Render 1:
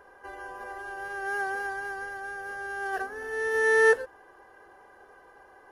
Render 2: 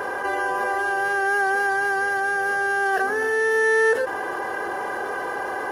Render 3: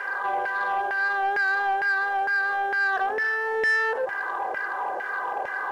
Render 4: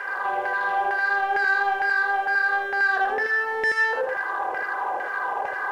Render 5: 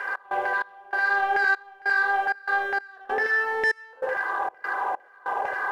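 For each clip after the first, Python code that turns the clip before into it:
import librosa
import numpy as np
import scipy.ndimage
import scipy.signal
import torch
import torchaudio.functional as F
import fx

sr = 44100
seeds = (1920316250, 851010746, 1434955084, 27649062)

y1 = scipy.signal.sosfilt(scipy.signal.butter(2, 130.0, 'highpass', fs=sr, output='sos'), x)
y1 = fx.env_flatten(y1, sr, amount_pct=70)
y2 = fx.filter_lfo_bandpass(y1, sr, shape='saw_down', hz=2.2, low_hz=600.0, high_hz=2100.0, q=2.3)
y2 = fx.leveller(y2, sr, passes=1)
y3 = y2 + 10.0 ** (-3.0 / 20.0) * np.pad(y2, (int(80 * sr / 1000.0), 0))[:len(y2)]
y4 = fx.step_gate(y3, sr, bpm=97, pattern='x.xx..xxxx..xx', floor_db=-24.0, edge_ms=4.5)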